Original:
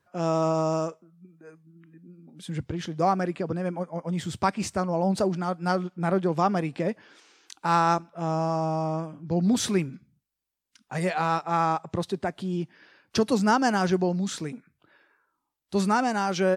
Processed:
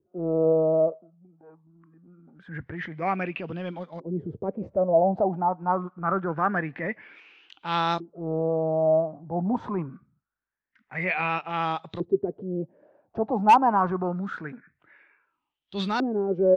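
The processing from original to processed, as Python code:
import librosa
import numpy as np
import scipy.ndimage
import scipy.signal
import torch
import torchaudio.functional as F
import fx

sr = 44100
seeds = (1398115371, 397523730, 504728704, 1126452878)

y = fx.block_float(x, sr, bits=7)
y = fx.transient(y, sr, attack_db=-6, sustain_db=1)
y = fx.filter_lfo_lowpass(y, sr, shape='saw_up', hz=0.25, low_hz=360.0, high_hz=3900.0, q=7.8)
y = np.clip(10.0 ** (7.0 / 20.0) * y, -1.0, 1.0) / 10.0 ** (7.0 / 20.0)
y = fx.high_shelf(y, sr, hz=9800.0, db=-9.0)
y = y * 10.0 ** (-3.5 / 20.0)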